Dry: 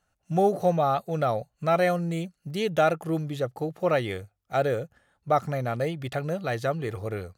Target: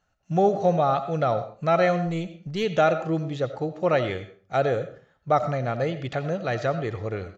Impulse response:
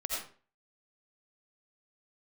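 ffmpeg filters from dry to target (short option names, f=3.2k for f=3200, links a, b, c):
-filter_complex "[0:a]aresample=16000,aresample=44100,asplit=2[a][b];[1:a]atrim=start_sample=2205,lowpass=6k[c];[b][c]afir=irnorm=-1:irlink=0,volume=-11.5dB[d];[a][d]amix=inputs=2:normalize=0,asplit=3[e][f][g];[e]afade=t=out:st=2.06:d=0.02[h];[f]aeval=exprs='0.178*(cos(1*acos(clip(val(0)/0.178,-1,1)))-cos(1*PI/2))+0.00562*(cos(6*acos(clip(val(0)/0.178,-1,1)))-cos(6*PI/2))':c=same,afade=t=in:st=2.06:d=0.02,afade=t=out:st=2.63:d=0.02[i];[g]afade=t=in:st=2.63:d=0.02[j];[h][i][j]amix=inputs=3:normalize=0"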